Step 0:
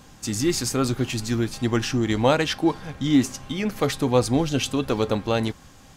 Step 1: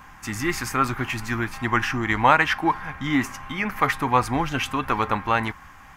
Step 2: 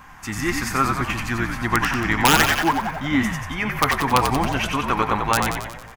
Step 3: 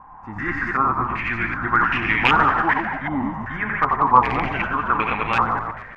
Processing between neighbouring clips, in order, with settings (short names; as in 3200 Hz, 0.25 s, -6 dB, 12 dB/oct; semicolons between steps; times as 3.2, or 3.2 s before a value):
graphic EQ 125/250/500/1000/2000/4000/8000 Hz -5/-4/-11/+10/+9/-10/-8 dB; gain +2 dB
wrapped overs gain 7.5 dB; on a send: frequency-shifting echo 91 ms, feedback 58%, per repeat -57 Hz, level -5 dB; on the sum: gain +1 dB
reverse delay 0.119 s, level -3 dB; stepped low-pass 2.6 Hz 920–2500 Hz; gain -5.5 dB